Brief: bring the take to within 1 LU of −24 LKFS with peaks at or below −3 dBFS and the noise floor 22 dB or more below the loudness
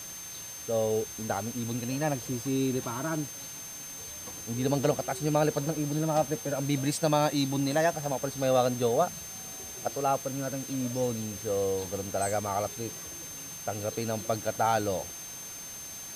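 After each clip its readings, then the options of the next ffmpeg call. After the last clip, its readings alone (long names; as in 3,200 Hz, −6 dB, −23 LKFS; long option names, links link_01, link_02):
interfering tone 6,300 Hz; level of the tone −41 dBFS; background noise floor −42 dBFS; target noise floor −53 dBFS; integrated loudness −30.5 LKFS; sample peak −12.5 dBFS; target loudness −24.0 LKFS
→ -af "bandreject=frequency=6300:width=30"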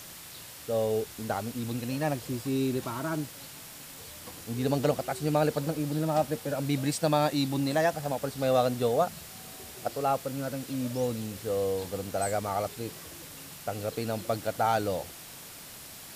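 interfering tone none found; background noise floor −46 dBFS; target noise floor −52 dBFS
→ -af "afftdn=noise_reduction=6:noise_floor=-46"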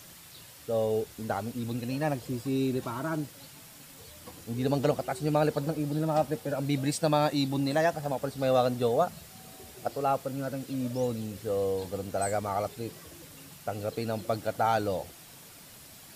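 background noise floor −51 dBFS; target noise floor −52 dBFS
→ -af "afftdn=noise_reduction=6:noise_floor=-51"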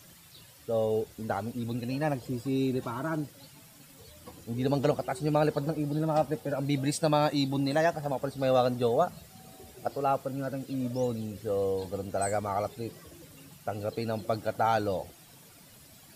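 background noise floor −54 dBFS; integrated loudness −30.5 LKFS; sample peak −13.0 dBFS; target loudness −24.0 LKFS
→ -af "volume=6.5dB"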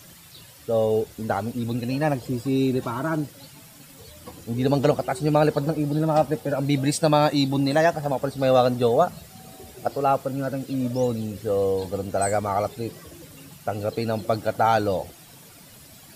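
integrated loudness −24.0 LKFS; sample peak −6.5 dBFS; background noise floor −48 dBFS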